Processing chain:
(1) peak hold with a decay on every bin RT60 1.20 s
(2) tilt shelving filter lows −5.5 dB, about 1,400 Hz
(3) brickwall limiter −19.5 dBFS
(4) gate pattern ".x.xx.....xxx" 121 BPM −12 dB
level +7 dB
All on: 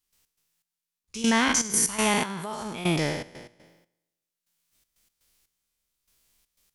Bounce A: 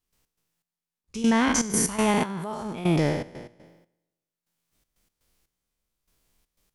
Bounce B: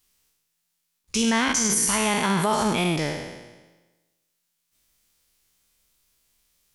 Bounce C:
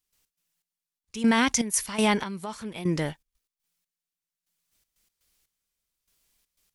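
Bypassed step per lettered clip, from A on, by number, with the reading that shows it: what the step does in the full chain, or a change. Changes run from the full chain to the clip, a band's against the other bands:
2, 4 kHz band −6.5 dB
4, change in crest factor −3.0 dB
1, 8 kHz band −3.5 dB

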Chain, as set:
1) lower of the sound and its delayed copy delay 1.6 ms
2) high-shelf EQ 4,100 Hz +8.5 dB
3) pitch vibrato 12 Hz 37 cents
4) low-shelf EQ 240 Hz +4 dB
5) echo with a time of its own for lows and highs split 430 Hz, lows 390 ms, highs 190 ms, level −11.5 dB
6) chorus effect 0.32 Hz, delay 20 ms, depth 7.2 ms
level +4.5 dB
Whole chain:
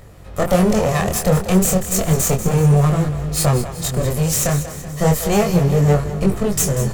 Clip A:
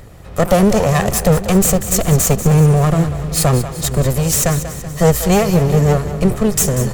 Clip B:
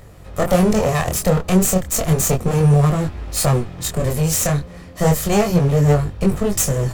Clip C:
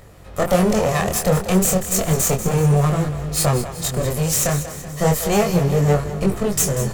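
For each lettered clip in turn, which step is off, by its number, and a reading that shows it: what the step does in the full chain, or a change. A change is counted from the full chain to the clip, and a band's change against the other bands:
6, change in integrated loudness +3.0 LU
5, change in momentary loudness spread +2 LU
4, 125 Hz band −2.5 dB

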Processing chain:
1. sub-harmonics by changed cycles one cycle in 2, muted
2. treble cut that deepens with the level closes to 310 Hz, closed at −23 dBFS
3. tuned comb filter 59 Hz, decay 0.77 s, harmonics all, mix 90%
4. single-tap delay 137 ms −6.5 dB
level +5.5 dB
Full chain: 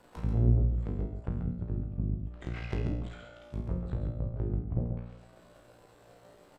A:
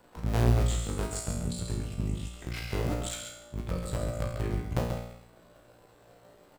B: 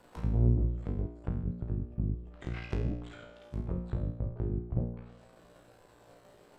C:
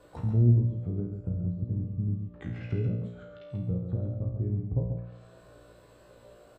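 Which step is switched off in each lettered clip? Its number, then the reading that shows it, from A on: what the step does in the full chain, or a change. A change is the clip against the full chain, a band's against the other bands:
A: 2, 4 kHz band +9.0 dB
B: 4, change in integrated loudness −1.0 LU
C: 1, 2 kHz band −7.0 dB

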